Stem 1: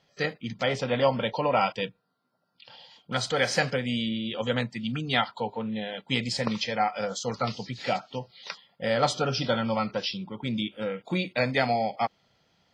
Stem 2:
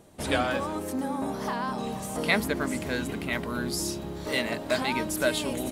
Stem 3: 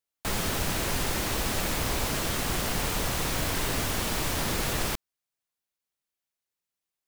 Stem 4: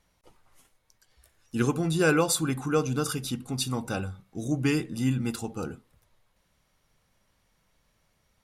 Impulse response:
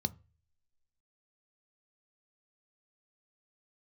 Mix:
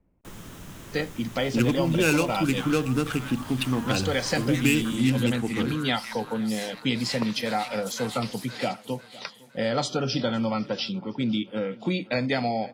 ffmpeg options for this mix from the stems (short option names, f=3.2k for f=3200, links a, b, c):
-filter_complex "[0:a]adelay=750,volume=0.5dB,asplit=2[a][b];[b]volume=-23.5dB[c];[1:a]aeval=exprs='(tanh(11.2*val(0)+0.65)-tanh(0.65))/11.2':c=same,highpass=f=990:w=0.5412,highpass=f=990:w=1.3066,adelay=2250,volume=0dB,asplit=3[d][e][f];[e]volume=-10.5dB[g];[f]volume=-4.5dB[h];[2:a]volume=-15.5dB,asplit=2[i][j];[j]volume=-13.5dB[k];[3:a]lowpass=f=2.6k:t=q:w=3.7,adynamicsmooth=sensitivity=5:basefreq=540,volume=3dB,asplit=2[l][m];[m]apad=whole_len=351209[n];[d][n]sidechaingate=range=-33dB:threshold=-53dB:ratio=16:detection=peak[o];[4:a]atrim=start_sample=2205[p];[g][k]amix=inputs=2:normalize=0[q];[q][p]afir=irnorm=-1:irlink=0[r];[c][h]amix=inputs=2:normalize=0,aecho=0:1:507|1014|1521|2028|2535|3042:1|0.43|0.185|0.0795|0.0342|0.0147[s];[a][o][i][l][r][s]amix=inputs=6:normalize=0,equalizer=f=290:t=o:w=1.2:g=8,acrossover=split=130|3000[t][u][v];[u]acompressor=threshold=-25dB:ratio=2.5[w];[t][w][v]amix=inputs=3:normalize=0"